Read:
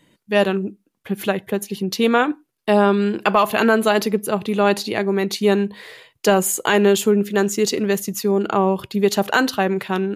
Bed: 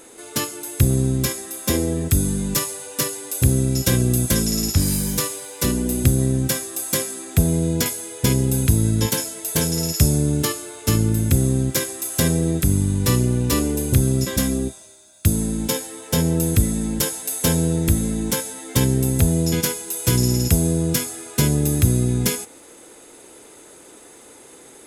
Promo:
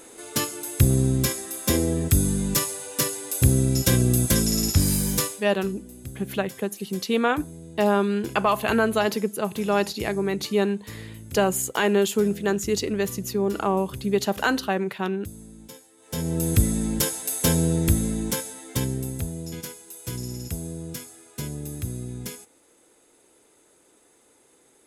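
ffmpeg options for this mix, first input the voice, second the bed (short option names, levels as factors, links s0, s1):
-filter_complex "[0:a]adelay=5100,volume=0.531[s0];[1:a]volume=7.94,afade=t=out:st=5.2:d=0.27:silence=0.1,afade=t=in:st=15.97:d=0.63:silence=0.105925,afade=t=out:st=17.87:d=1.45:silence=0.237137[s1];[s0][s1]amix=inputs=2:normalize=0"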